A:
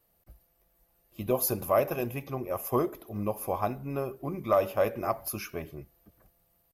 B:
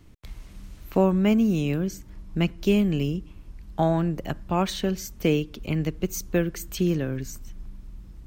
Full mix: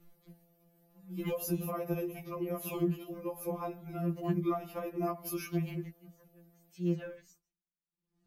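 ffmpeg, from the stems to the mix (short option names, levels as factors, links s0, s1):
-filter_complex "[0:a]equalizer=f=170:w=0.52:g=10.5,alimiter=limit=0.15:level=0:latency=1:release=235,volume=0.841[s0];[1:a]aeval=exprs='val(0)*pow(10,-37*(0.5-0.5*cos(2*PI*0.71*n/s))/20)':c=same,volume=0.355[s1];[s0][s1]amix=inputs=2:normalize=0,acrossover=split=210[s2][s3];[s3]acompressor=threshold=0.0355:ratio=6[s4];[s2][s4]amix=inputs=2:normalize=0,afftfilt=real='re*2.83*eq(mod(b,8),0)':imag='im*2.83*eq(mod(b,8),0)':win_size=2048:overlap=0.75"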